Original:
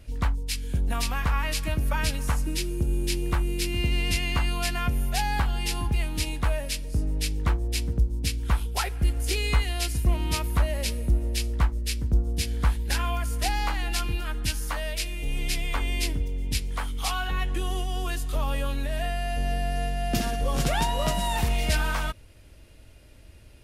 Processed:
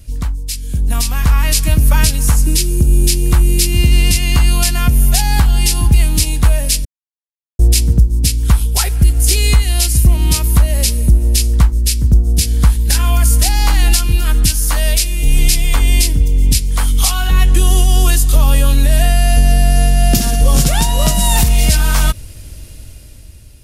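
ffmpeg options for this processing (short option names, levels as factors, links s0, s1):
-filter_complex "[0:a]asplit=3[s0][s1][s2];[s0]atrim=end=6.85,asetpts=PTS-STARTPTS,afade=t=out:st=6.846:d=0.004:c=hsin[s3];[s1]atrim=start=6.85:end=7.59,asetpts=PTS-STARTPTS,volume=0[s4];[s2]atrim=start=7.59,asetpts=PTS-STARTPTS,afade=t=in:d=0.004:c=hsin[s5];[s3][s4][s5]concat=n=3:v=0:a=1,bass=f=250:g=9,treble=f=4000:g=14,alimiter=limit=0.251:level=0:latency=1:release=464,dynaudnorm=f=220:g=9:m=3.76,volume=1.19"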